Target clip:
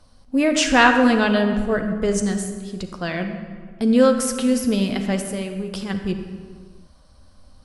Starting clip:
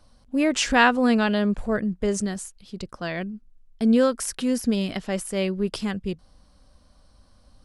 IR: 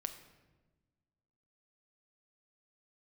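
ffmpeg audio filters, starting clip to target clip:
-filter_complex "[0:a]asplit=3[s0][s1][s2];[s0]afade=t=out:st=5.2:d=0.02[s3];[s1]acompressor=threshold=0.0355:ratio=6,afade=t=in:st=5.2:d=0.02,afade=t=out:st=5.89:d=0.02[s4];[s2]afade=t=in:st=5.89:d=0.02[s5];[s3][s4][s5]amix=inputs=3:normalize=0[s6];[1:a]atrim=start_sample=2205,afade=t=out:st=0.45:d=0.01,atrim=end_sample=20286,asetrate=23814,aresample=44100[s7];[s6][s7]afir=irnorm=-1:irlink=0,volume=1.26"

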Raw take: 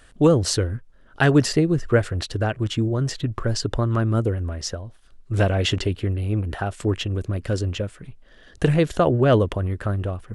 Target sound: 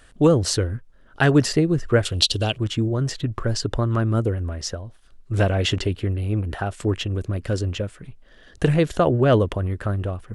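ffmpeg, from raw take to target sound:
-filter_complex "[0:a]asettb=1/sr,asplit=3[s0][s1][s2];[s0]atrim=end=2.054[s3];[s1]atrim=start=2.05:end=2.58,asetpts=PTS-STARTPTS,afade=t=in:d=0.004:c=qsin,afade=t=out:st=0.526:d=0.004:c=qsin,highshelf=f=2400:t=q:w=3:g=10[s4];[s2]atrim=start=2.576[s5];[s3][s4]acrossfade=d=0.004:c1=hsin:c2=qsin[s6];[s6][s5]acrossfade=d=0.004:c1=qsin:c2=hsin"

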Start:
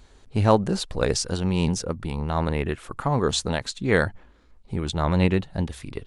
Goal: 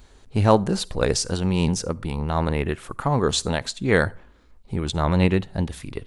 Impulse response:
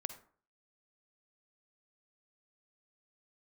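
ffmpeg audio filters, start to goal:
-filter_complex "[0:a]asplit=2[s0][s1];[s1]highshelf=f=8700:g=11[s2];[1:a]atrim=start_sample=2205,highshelf=f=8600:g=7.5[s3];[s2][s3]afir=irnorm=-1:irlink=0,volume=0.237[s4];[s0][s4]amix=inputs=2:normalize=0"

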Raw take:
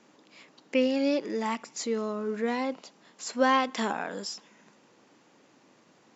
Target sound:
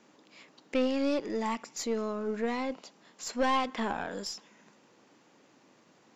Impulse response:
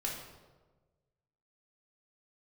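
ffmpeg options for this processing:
-filter_complex "[0:a]asettb=1/sr,asplit=3[s0][s1][s2];[s0]atrim=end=3.714[s3];[s1]atrim=start=3.71:end=4.11,asetpts=PTS-STARTPTS,afade=t=in:d=0.004:c=qsin,afade=t=out:st=0.396:d=0.004:c=qsin,acrossover=split=3500[s4][s5];[s5]acompressor=threshold=0.002:ratio=4:attack=1:release=60[s6];[s4][s6]amix=inputs=2:normalize=0[s7];[s2]atrim=start=4.106[s8];[s3][s7]acrossfade=d=0.004:c1=hsin:c2=qsin[s9];[s9][s8]acrossfade=d=0.004:c1=qsin:c2=hsin,aeval=exprs='(tanh(11.2*val(0)+0.4)-tanh(0.4))/11.2':c=same"

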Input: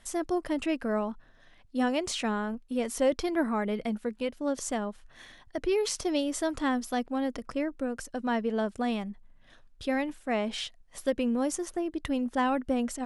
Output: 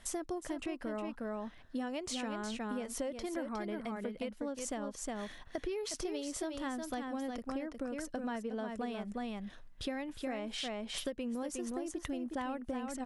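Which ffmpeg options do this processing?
-af "aecho=1:1:361:0.501,acompressor=threshold=0.0158:ratio=12,volume=1.12"

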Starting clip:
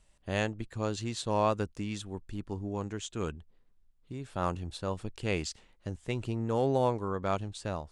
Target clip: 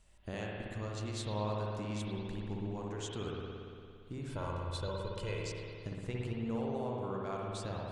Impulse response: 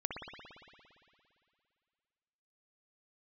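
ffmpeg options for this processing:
-filter_complex "[0:a]asettb=1/sr,asplit=3[s0][s1][s2];[s0]atrim=end=4.274[s3];[s1]atrim=start=4.27:end=5.39,asetpts=PTS-STARTPTS,afade=t=in:d=0.004:c=qsin,afade=t=out:st=1.116:d=0.004:c=qsin,aecho=1:1:2:0.82,atrim=end_sample=49392[s4];[s2]atrim=start=5.386[s5];[s3][s4]acrossfade=d=0.004:c1=hsin:c2=qsin[s6];[s6][s5]acrossfade=d=0.004:c1=qsin:c2=hsin,acompressor=threshold=0.0126:ratio=6[s7];[1:a]atrim=start_sample=2205[s8];[s7][s8]afir=irnorm=-1:irlink=0,volume=1.12"

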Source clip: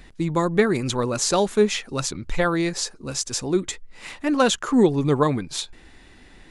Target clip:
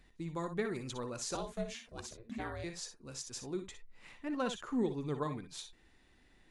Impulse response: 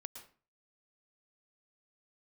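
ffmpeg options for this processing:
-filter_complex "[0:a]asettb=1/sr,asplit=3[s0][s1][s2];[s0]atrim=end=1.354[s3];[s1]atrim=start=1.35:end=2.64,asetpts=PTS-STARTPTS,afade=t=in:d=0.004:c=qsin,afade=t=out:st=1.286:d=0.004:c=qsin,aeval=exprs='val(0)*sin(2*PI*230*n/s)':c=same[s4];[s2]atrim=start=2.636[s5];[s3][s4]acrossfade=d=0.004:c1=hsin:c2=qsin[s6];[s6][s5]acrossfade=d=0.004:c1=qsin:c2=hsin,asettb=1/sr,asplit=3[s7][s8][s9];[s7]atrim=end=3.634[s10];[s8]atrim=start=3.63:end=4.83,asetpts=PTS-STARTPTS,afade=t=in:d=0.004:c=qsin,afade=t=out:st=1.196:d=0.004:c=qsin,bass=f=250:g=4,treble=f=4000:g=-6[s11];[s9]atrim=start=4.826[s12];[s10][s11]acrossfade=d=0.004:c1=hsin:c2=qsin[s13];[s13][s12]acrossfade=d=0.004:c1=qsin:c2=hsin[s14];[1:a]atrim=start_sample=2205,afade=t=out:st=0.17:d=0.01,atrim=end_sample=7938,asetrate=83790,aresample=44100[s15];[s14][s15]afir=irnorm=-1:irlink=0,volume=0.473"

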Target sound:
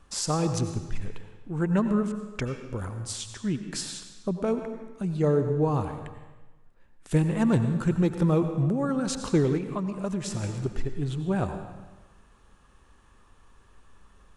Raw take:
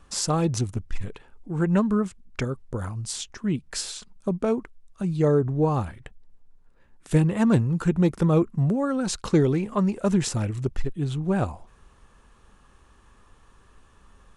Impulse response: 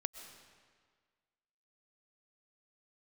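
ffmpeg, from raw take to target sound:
-filter_complex "[1:a]atrim=start_sample=2205,asetrate=61740,aresample=44100[s0];[0:a][s0]afir=irnorm=-1:irlink=0,asplit=3[s1][s2][s3];[s1]afade=t=out:st=9.57:d=0.02[s4];[s2]acompressor=threshold=0.0355:ratio=4,afade=t=in:st=9.57:d=0.02,afade=t=out:st=10.42:d=0.02[s5];[s3]afade=t=in:st=10.42:d=0.02[s6];[s4][s5][s6]amix=inputs=3:normalize=0,volume=1.19"

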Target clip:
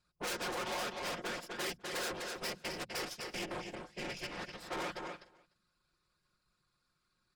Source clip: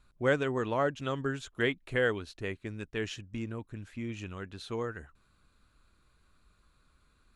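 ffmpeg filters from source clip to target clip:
-filter_complex "[0:a]aeval=exprs='0.211*(cos(1*acos(clip(val(0)/0.211,-1,1)))-cos(1*PI/2))+0.0422*(cos(3*acos(clip(val(0)/0.211,-1,1)))-cos(3*PI/2))+0.075*(cos(5*acos(clip(val(0)/0.211,-1,1)))-cos(5*PI/2))+0.0668*(cos(7*acos(clip(val(0)/0.211,-1,1)))-cos(7*PI/2))+0.00596*(cos(8*acos(clip(val(0)/0.211,-1,1)))-cos(8*PI/2))':c=same,acrossover=split=240|1100[s0][s1][s2];[s0]acompressor=threshold=0.00224:ratio=4[s3];[s1]acompressor=threshold=0.00794:ratio=4[s4];[s2]acompressor=threshold=0.00562:ratio=4[s5];[s3][s4][s5]amix=inputs=3:normalize=0,equalizer=f=5100:t=o:w=0.35:g=13,bandreject=f=60:t=h:w=6,bandreject=f=120:t=h:w=6,bandreject=f=180:t=h:w=6,afftfilt=real='hypot(re,im)*cos(2*PI*random(0))':imag='hypot(re,im)*sin(2*PI*random(1))':win_size=512:overlap=0.75,aeval=exprs='0.0473*sin(PI/2*7.08*val(0)/0.0473)':c=same,asplit=2[s6][s7];[s7]aecho=0:1:251:0.237[s8];[s6][s8]amix=inputs=2:normalize=0,asoftclip=type=tanh:threshold=0.0112,lowshelf=f=180:g=-8.5,aecho=1:1:5.6:0.48,asplit=2[s9][s10];[s10]aecho=0:1:297:0.075[s11];[s9][s11]amix=inputs=2:normalize=0,volume=1.33"

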